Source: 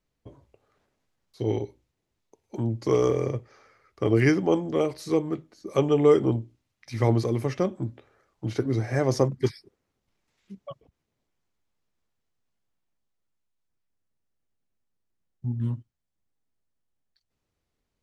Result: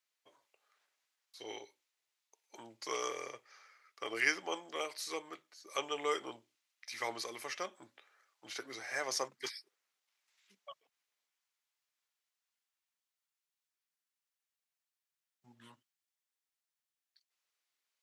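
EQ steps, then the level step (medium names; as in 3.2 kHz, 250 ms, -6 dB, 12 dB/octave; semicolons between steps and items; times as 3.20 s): Bessel high-pass 1.7 kHz, order 2; +1.0 dB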